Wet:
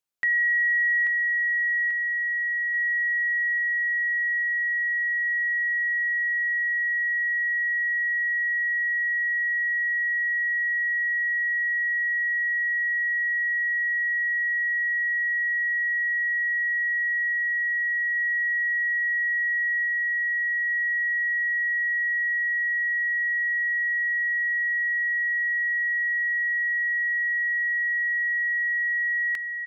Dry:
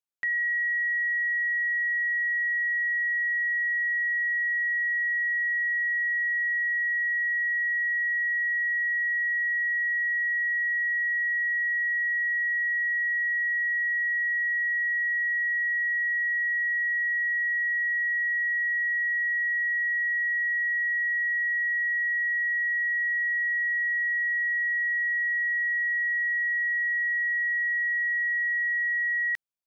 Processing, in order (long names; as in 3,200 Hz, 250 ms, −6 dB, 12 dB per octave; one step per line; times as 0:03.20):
0:17.32–0:19.02: bass and treble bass +12 dB, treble 0 dB
repeating echo 837 ms, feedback 58%, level −7 dB
level +4.5 dB